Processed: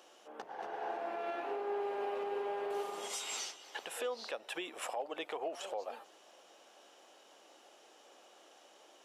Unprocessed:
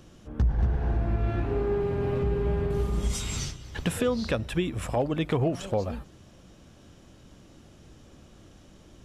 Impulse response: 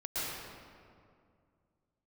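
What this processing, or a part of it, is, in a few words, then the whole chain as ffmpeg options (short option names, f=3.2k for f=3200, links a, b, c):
laptop speaker: -af "highpass=f=440:w=0.5412,highpass=f=440:w=1.3066,equalizer=f=800:t=o:w=0.46:g=7,equalizer=f=2.9k:t=o:w=0.21:g=4,alimiter=level_in=2.5dB:limit=-24dB:level=0:latency=1:release=287,volume=-2.5dB,volume=-2.5dB"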